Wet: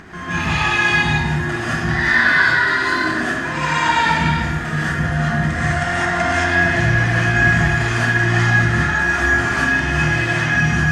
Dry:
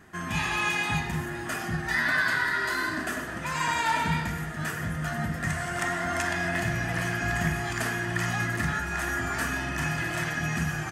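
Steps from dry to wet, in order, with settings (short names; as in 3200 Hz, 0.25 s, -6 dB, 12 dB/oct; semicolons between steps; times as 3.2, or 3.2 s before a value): LPF 5300 Hz 12 dB/oct; upward compressor, threshold -34 dBFS; non-linear reverb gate 0.24 s rising, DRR -8 dB; gain +2 dB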